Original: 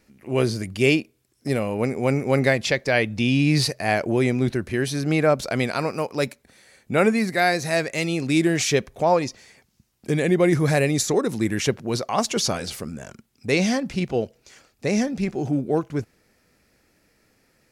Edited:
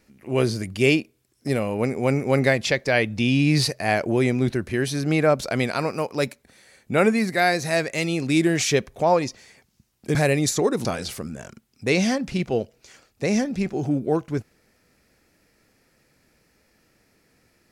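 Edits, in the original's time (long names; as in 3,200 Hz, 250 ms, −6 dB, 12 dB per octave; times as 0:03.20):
0:10.15–0:10.67: remove
0:11.37–0:12.47: remove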